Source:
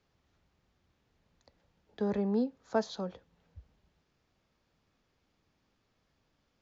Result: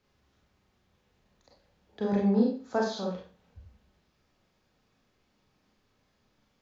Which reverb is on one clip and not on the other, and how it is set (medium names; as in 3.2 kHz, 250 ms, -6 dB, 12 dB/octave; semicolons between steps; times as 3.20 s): Schroeder reverb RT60 0.39 s, combs from 30 ms, DRR -2.5 dB